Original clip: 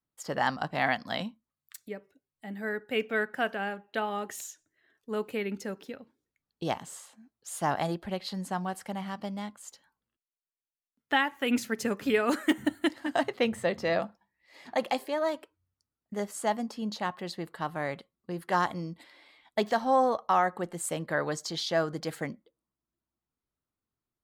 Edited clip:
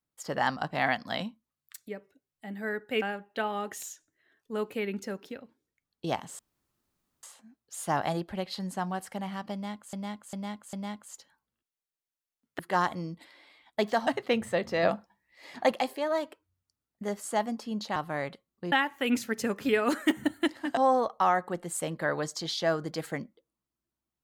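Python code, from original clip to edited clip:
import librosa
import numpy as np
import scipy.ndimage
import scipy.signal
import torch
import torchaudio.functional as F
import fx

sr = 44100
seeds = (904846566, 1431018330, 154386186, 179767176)

y = fx.edit(x, sr, fx.cut(start_s=3.02, length_s=0.58),
    fx.insert_room_tone(at_s=6.97, length_s=0.84),
    fx.repeat(start_s=9.27, length_s=0.4, count=4),
    fx.swap(start_s=11.13, length_s=2.05, other_s=18.38, other_length_s=1.48),
    fx.clip_gain(start_s=13.94, length_s=0.88, db=4.0),
    fx.cut(start_s=17.07, length_s=0.55), tone=tone)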